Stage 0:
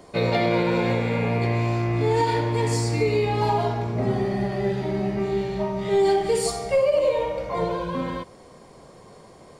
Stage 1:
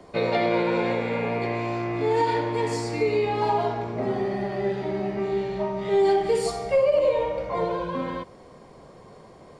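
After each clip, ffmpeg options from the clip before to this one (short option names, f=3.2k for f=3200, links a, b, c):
-filter_complex "[0:a]lowpass=f=3.4k:p=1,acrossover=split=230|1000[a][b][c];[a]acompressor=threshold=-39dB:ratio=4[d];[d][b][c]amix=inputs=3:normalize=0"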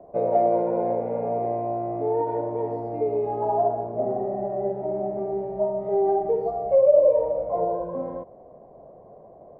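-af "lowpass=f=660:t=q:w=4.9,volume=-6dB"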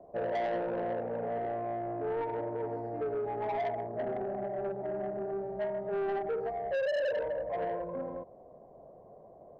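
-af "asoftclip=type=tanh:threshold=-22.5dB,volume=-6dB"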